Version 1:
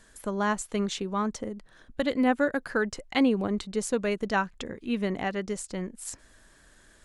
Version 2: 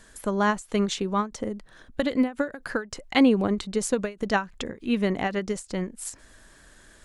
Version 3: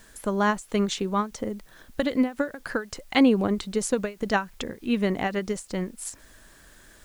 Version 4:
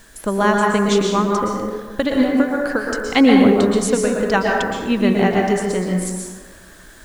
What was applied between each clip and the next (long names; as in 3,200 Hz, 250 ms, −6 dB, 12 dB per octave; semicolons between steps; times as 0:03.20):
every ending faded ahead of time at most 220 dB per second; level +4.5 dB
background noise white −62 dBFS
dense smooth reverb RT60 1.4 s, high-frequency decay 0.5×, pre-delay 105 ms, DRR −1 dB; level +5.5 dB